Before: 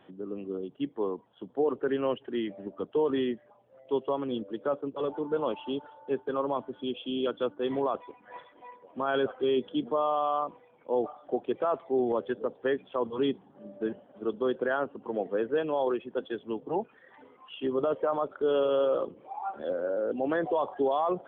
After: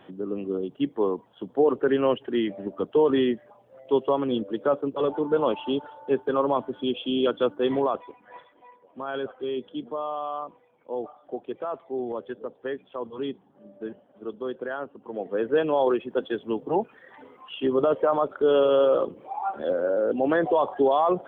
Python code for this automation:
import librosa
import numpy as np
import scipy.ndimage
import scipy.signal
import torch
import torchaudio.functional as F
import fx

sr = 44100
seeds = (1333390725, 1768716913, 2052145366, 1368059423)

y = fx.gain(x, sr, db=fx.line((7.65, 6.5), (8.68, -3.5), (15.06, -3.5), (15.56, 6.0)))